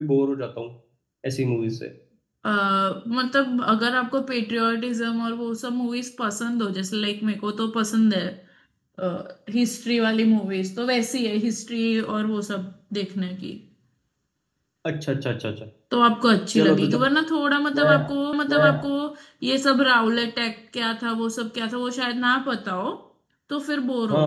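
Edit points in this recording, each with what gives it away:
0:18.33: the same again, the last 0.74 s

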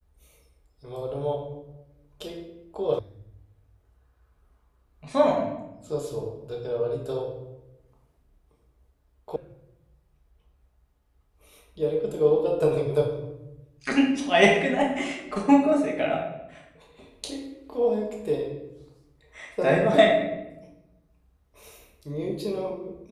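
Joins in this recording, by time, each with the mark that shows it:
0:02.99: cut off before it has died away
0:09.36: cut off before it has died away

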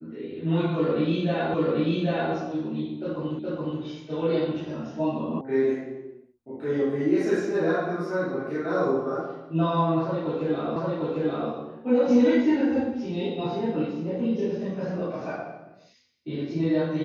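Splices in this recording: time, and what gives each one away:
0:01.54: the same again, the last 0.79 s
0:03.39: the same again, the last 0.42 s
0:05.41: cut off before it has died away
0:10.76: the same again, the last 0.75 s

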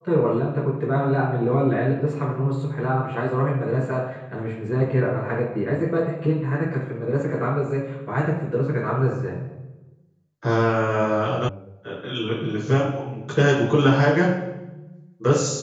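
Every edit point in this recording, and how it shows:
0:11.49: cut off before it has died away

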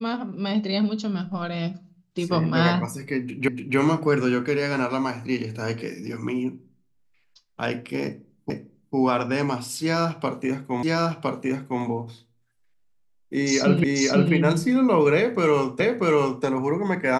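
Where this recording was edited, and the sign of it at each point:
0:03.48: the same again, the last 0.29 s
0:08.50: the same again, the last 0.45 s
0:10.83: the same again, the last 1.01 s
0:13.84: the same again, the last 0.49 s
0:15.80: the same again, the last 0.64 s

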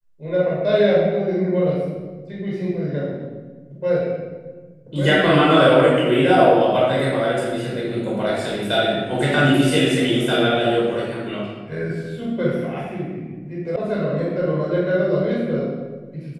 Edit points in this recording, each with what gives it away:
0:13.76: cut off before it has died away

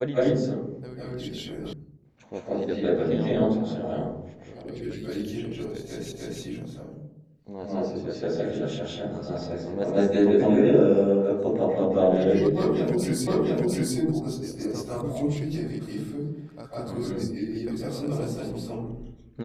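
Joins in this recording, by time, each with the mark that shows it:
0:01.73: cut off before it has died away
0:06.12: the same again, the last 0.3 s
0:13.27: the same again, the last 0.7 s

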